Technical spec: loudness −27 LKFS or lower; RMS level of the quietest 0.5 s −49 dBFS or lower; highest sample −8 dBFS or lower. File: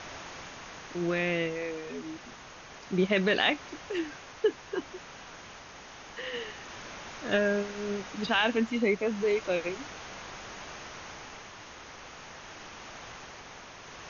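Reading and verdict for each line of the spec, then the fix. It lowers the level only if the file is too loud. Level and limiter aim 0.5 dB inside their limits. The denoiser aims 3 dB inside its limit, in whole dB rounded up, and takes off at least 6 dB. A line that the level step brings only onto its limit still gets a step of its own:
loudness −31.0 LKFS: in spec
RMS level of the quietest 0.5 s −48 dBFS: out of spec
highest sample −13.5 dBFS: in spec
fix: broadband denoise 6 dB, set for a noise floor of −48 dBFS

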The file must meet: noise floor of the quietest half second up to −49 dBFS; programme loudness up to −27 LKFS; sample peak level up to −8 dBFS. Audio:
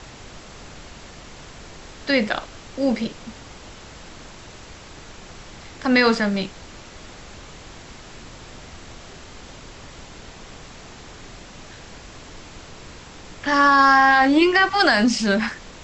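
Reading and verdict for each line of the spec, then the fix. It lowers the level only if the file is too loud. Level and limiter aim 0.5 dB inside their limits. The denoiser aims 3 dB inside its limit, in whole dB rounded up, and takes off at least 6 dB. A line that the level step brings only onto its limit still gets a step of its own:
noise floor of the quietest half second −41 dBFS: out of spec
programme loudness −18.0 LKFS: out of spec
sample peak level −4.5 dBFS: out of spec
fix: level −9.5 dB

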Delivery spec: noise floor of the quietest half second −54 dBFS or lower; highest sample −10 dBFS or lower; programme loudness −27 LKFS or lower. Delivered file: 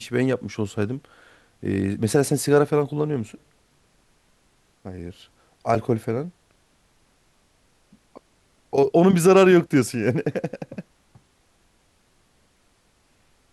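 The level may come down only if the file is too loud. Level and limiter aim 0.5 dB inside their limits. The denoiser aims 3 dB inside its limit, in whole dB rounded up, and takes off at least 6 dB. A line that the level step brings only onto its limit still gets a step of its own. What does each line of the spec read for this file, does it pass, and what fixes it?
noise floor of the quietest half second −63 dBFS: in spec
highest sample −4.5 dBFS: out of spec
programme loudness −21.0 LKFS: out of spec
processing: level −6.5 dB

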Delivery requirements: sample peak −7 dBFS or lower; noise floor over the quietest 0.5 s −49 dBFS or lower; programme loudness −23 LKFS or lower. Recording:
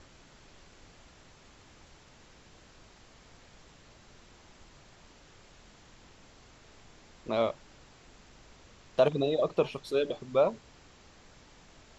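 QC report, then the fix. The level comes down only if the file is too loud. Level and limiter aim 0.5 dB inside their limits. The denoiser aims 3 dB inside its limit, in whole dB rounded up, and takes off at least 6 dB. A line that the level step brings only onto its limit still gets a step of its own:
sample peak −12.0 dBFS: in spec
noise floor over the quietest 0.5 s −57 dBFS: in spec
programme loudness −29.5 LKFS: in spec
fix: no processing needed

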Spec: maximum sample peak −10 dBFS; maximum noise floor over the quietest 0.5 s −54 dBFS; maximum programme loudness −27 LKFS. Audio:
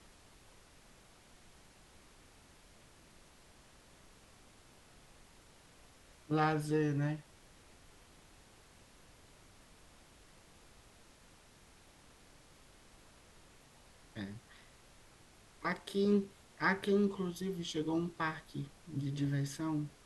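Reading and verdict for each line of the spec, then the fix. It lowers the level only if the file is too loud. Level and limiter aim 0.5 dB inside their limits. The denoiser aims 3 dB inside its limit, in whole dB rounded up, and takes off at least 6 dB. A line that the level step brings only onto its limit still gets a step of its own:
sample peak −19.0 dBFS: in spec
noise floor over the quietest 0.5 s −62 dBFS: in spec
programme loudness −36.0 LKFS: in spec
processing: no processing needed

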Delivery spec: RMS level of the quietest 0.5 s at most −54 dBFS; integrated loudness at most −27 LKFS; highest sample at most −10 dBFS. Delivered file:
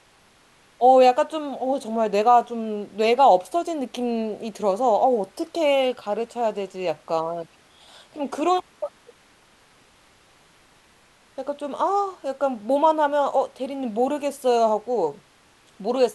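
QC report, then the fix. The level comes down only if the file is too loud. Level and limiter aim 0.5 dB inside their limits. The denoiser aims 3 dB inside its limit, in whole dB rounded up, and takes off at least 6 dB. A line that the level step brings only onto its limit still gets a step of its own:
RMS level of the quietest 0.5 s −57 dBFS: in spec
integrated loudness −22.5 LKFS: out of spec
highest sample −5.0 dBFS: out of spec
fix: level −5 dB
brickwall limiter −10.5 dBFS

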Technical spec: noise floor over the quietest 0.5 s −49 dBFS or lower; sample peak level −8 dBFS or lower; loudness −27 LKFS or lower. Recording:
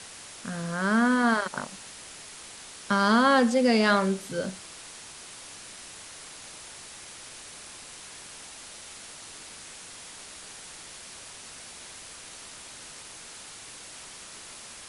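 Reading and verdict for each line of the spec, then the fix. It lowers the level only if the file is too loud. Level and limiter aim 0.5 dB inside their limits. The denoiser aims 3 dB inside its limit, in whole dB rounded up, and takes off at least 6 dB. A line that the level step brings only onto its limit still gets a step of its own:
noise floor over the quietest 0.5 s −45 dBFS: out of spec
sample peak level −9.0 dBFS: in spec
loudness −24.5 LKFS: out of spec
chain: broadband denoise 6 dB, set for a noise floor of −45 dBFS
level −3 dB

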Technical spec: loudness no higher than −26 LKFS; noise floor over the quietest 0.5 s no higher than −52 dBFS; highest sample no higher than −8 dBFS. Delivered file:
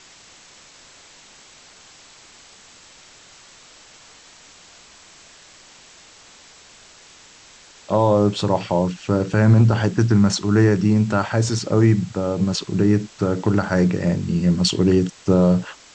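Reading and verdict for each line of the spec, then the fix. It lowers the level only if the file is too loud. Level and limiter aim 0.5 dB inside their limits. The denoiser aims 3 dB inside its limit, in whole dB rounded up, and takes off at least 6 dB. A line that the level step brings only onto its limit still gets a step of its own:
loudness −19.0 LKFS: out of spec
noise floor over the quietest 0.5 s −47 dBFS: out of spec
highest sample −5.5 dBFS: out of spec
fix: level −7.5 dB

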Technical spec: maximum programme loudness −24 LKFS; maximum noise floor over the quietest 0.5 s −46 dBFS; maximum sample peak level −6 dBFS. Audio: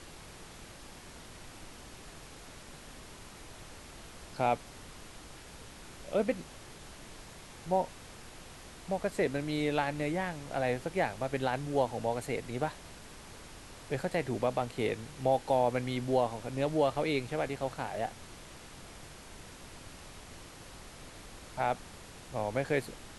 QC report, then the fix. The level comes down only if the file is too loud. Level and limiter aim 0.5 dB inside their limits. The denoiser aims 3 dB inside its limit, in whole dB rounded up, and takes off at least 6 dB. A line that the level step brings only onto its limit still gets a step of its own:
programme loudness −33.0 LKFS: in spec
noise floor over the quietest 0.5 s −49 dBFS: in spec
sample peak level −15.0 dBFS: in spec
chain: no processing needed

